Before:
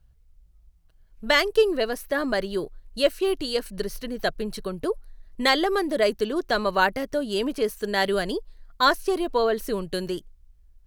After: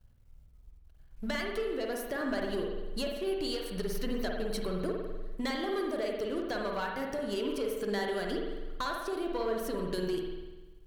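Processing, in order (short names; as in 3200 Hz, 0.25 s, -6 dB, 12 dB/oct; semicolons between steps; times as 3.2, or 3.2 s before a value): compressor 16:1, threshold -31 dBFS, peak gain reduction 18 dB; sample leveller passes 2; resonator 90 Hz, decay 0.64 s, harmonics odd, mix 50%; spring tank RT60 1.2 s, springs 49 ms, chirp 40 ms, DRR 0.5 dB; gain -1.5 dB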